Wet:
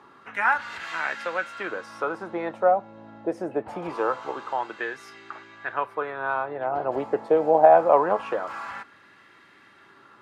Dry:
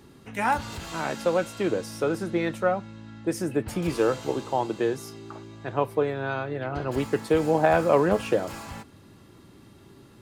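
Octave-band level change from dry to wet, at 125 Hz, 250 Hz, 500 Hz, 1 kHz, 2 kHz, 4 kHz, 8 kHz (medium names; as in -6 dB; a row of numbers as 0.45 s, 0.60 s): -13.5 dB, -6.5 dB, +1.0 dB, +5.0 dB, +4.0 dB, -5.0 dB, under -10 dB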